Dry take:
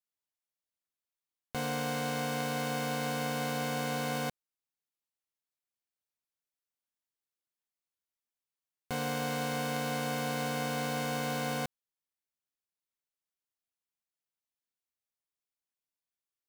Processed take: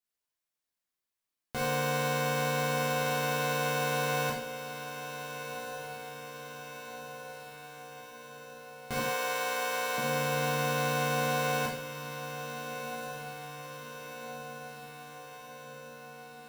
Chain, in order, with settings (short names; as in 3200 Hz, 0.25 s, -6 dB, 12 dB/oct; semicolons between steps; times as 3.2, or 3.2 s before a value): 8.99–9.98 HPF 520 Hz 12 dB/oct; diffused feedback echo 1.482 s, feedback 63%, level -10 dB; reverb RT60 0.50 s, pre-delay 6 ms, DRR -2.5 dB